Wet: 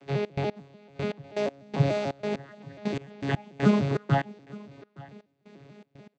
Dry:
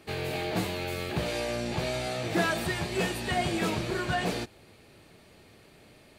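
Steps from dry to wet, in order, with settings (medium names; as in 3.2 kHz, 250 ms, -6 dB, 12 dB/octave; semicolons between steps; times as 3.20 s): vocoder on a broken chord bare fifth, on C#3, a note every 146 ms; trance gate "xx.x....x..x..x" 121 bpm -24 dB; delay 868 ms -21.5 dB; trim +7 dB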